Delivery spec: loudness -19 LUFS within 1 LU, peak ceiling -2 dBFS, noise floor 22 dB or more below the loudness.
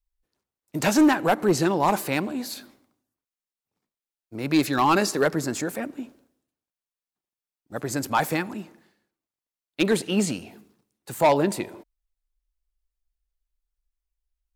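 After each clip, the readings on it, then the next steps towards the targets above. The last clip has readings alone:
clipped 0.4%; flat tops at -12.5 dBFS; loudness -23.5 LUFS; peak -12.5 dBFS; loudness target -19.0 LUFS
-> clip repair -12.5 dBFS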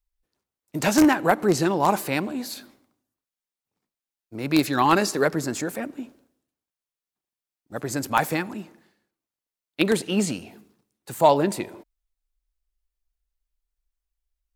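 clipped 0.0%; loudness -23.0 LUFS; peak -3.5 dBFS; loudness target -19.0 LUFS
-> gain +4 dB; limiter -2 dBFS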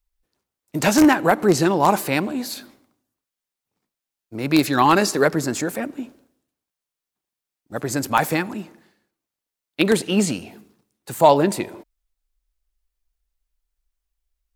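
loudness -19.5 LUFS; peak -2.0 dBFS; noise floor -87 dBFS

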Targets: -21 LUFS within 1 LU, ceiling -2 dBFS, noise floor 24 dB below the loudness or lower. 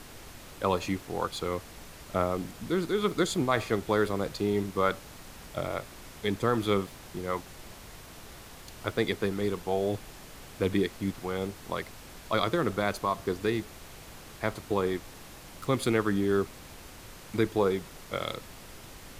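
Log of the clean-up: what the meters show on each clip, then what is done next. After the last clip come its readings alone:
noise floor -48 dBFS; noise floor target -55 dBFS; loudness -30.5 LUFS; peak -11.5 dBFS; loudness target -21.0 LUFS
-> noise print and reduce 7 dB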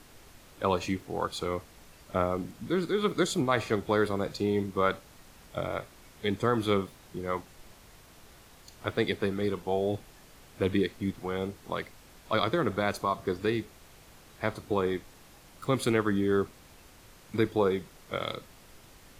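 noise floor -55 dBFS; loudness -30.5 LUFS; peak -12.0 dBFS; loudness target -21.0 LUFS
-> gain +9.5 dB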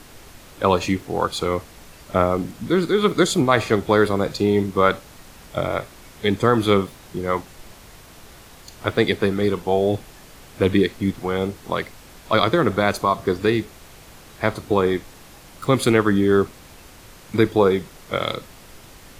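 loudness -21.0 LUFS; peak -2.5 dBFS; noise floor -45 dBFS

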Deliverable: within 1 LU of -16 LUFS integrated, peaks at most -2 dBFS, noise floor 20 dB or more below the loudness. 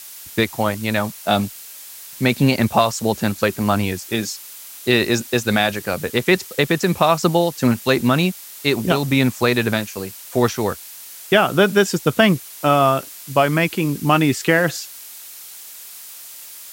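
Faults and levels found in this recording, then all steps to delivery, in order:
noise floor -38 dBFS; noise floor target -39 dBFS; loudness -19.0 LUFS; peak -2.5 dBFS; loudness target -16.0 LUFS
-> noise print and reduce 6 dB; gain +3 dB; limiter -2 dBFS

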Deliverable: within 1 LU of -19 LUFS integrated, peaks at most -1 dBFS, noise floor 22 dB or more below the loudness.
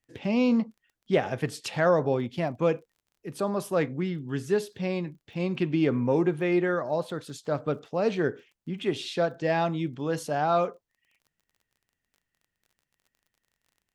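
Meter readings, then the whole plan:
ticks 25/s; loudness -28.0 LUFS; peak -10.5 dBFS; loudness target -19.0 LUFS
-> de-click; gain +9 dB

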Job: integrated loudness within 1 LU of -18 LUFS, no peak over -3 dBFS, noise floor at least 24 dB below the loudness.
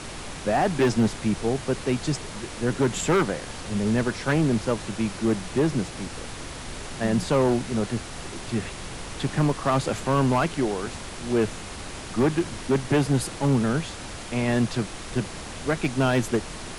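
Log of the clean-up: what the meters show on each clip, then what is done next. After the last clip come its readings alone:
clipped 1.8%; flat tops at -15.5 dBFS; noise floor -37 dBFS; noise floor target -50 dBFS; loudness -25.5 LUFS; peak -15.5 dBFS; loudness target -18.0 LUFS
-> clip repair -15.5 dBFS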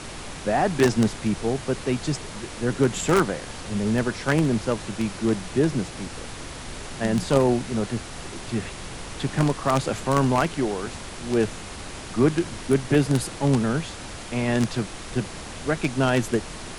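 clipped 0.0%; noise floor -37 dBFS; noise floor target -49 dBFS
-> noise print and reduce 12 dB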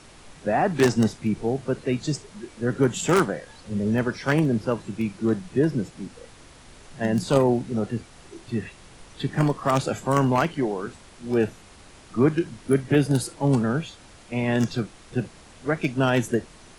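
noise floor -49 dBFS; loudness -24.5 LUFS; peak -6.5 dBFS; loudness target -18.0 LUFS
-> gain +6.5 dB; limiter -3 dBFS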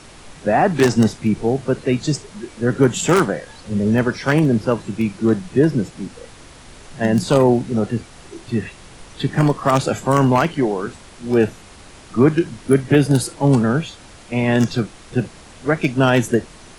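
loudness -18.5 LUFS; peak -3.0 dBFS; noise floor -43 dBFS

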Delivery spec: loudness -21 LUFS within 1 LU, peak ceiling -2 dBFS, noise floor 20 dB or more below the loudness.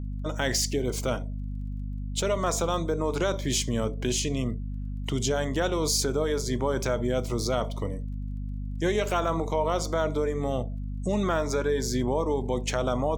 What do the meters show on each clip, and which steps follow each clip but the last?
ticks 17/s; hum 50 Hz; harmonics up to 250 Hz; hum level -30 dBFS; loudness -28.0 LUFS; peak -11.5 dBFS; loudness target -21.0 LUFS
-> de-click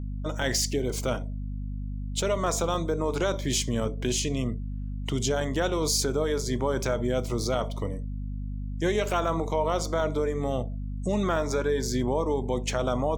ticks 0.46/s; hum 50 Hz; harmonics up to 250 Hz; hum level -30 dBFS
-> de-hum 50 Hz, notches 5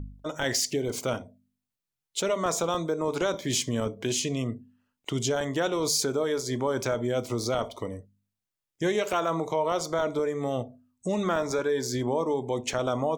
hum none; loudness -28.5 LUFS; peak -13.0 dBFS; loudness target -21.0 LUFS
-> gain +7.5 dB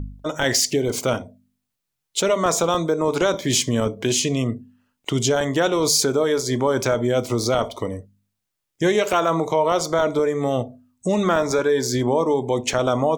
loudness -21.0 LUFS; peak -5.5 dBFS; noise floor -80 dBFS

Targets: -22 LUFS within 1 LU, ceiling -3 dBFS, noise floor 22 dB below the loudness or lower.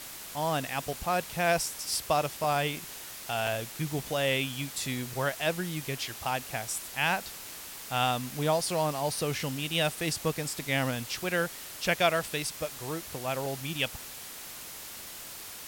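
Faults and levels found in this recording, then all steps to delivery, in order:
dropouts 5; longest dropout 1.8 ms; noise floor -43 dBFS; noise floor target -53 dBFS; loudness -31.0 LUFS; peak -12.5 dBFS; loudness target -22.0 LUFS
-> interpolate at 2.44/3.47/10.01/12.49/13.46, 1.8 ms; noise print and reduce 10 dB; gain +9 dB

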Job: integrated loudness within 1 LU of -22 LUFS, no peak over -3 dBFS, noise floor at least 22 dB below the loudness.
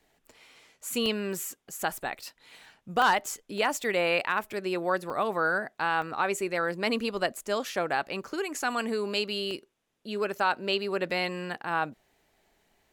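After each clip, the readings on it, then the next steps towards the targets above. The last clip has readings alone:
dropouts 6; longest dropout 1.6 ms; loudness -29.5 LUFS; peak -14.5 dBFS; loudness target -22.0 LUFS
-> interpolate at 1.06/3.02/3.58/5.1/6.02/9.51, 1.6 ms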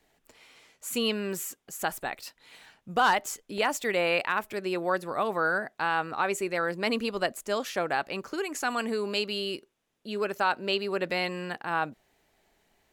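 dropouts 0; loudness -29.5 LUFS; peak -14.5 dBFS; loudness target -22.0 LUFS
-> gain +7.5 dB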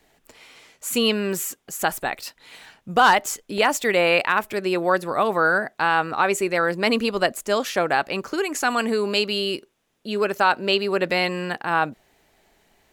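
loudness -22.0 LUFS; peak -7.0 dBFS; noise floor -66 dBFS

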